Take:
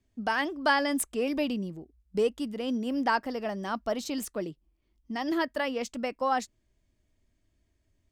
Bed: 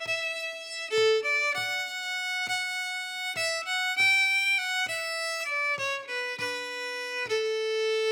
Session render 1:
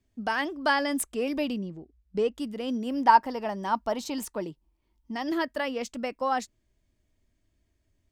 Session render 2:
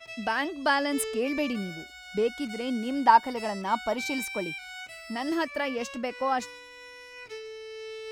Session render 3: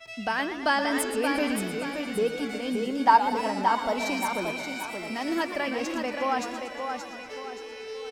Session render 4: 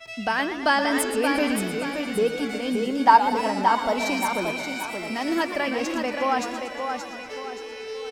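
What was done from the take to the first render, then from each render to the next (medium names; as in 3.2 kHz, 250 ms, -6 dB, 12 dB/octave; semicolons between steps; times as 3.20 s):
1.58–2.35 s: distance through air 89 m; 3.02–5.16 s: peaking EQ 920 Hz +12.5 dB 0.27 oct
add bed -12.5 dB
feedback delay 576 ms, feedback 39%, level -6 dB; modulated delay 118 ms, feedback 67%, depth 162 cents, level -11 dB
trim +3.5 dB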